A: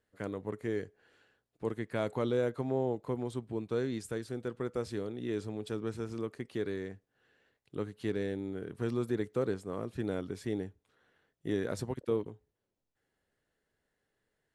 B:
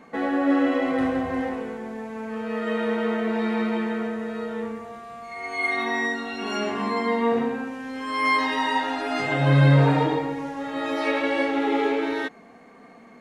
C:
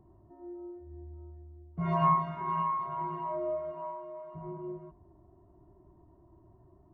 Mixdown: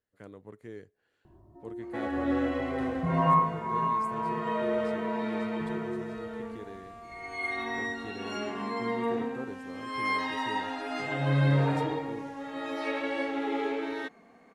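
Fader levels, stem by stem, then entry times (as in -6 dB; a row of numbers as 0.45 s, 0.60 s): -9.5 dB, -8.0 dB, +2.5 dB; 0.00 s, 1.80 s, 1.25 s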